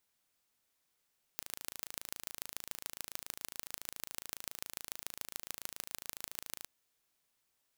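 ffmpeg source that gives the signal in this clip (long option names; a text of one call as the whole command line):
ffmpeg -f lavfi -i "aevalsrc='0.299*eq(mod(n,1621),0)*(0.5+0.5*eq(mod(n,6484),0))':duration=5.26:sample_rate=44100" out.wav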